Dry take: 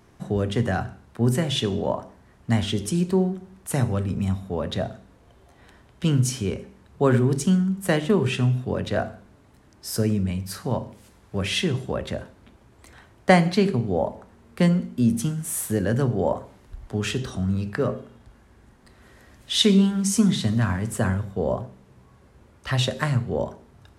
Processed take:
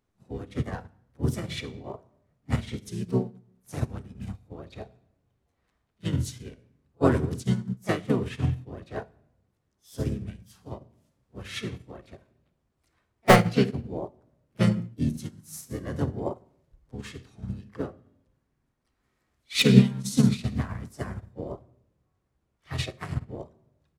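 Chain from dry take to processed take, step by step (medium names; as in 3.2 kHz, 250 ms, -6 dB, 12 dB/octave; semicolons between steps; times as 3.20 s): treble shelf 2.9 kHz +3 dB; pre-echo 47 ms -20 dB; in parallel at -8.5 dB: integer overflow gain 6.5 dB; on the sum: harmony voices -7 st -1 dB, +3 st -5 dB; on a send at -11 dB: reverberation RT60 0.95 s, pre-delay 3 ms; on the sum: upward expansion 2.5:1, over -24 dBFS; trim -3 dB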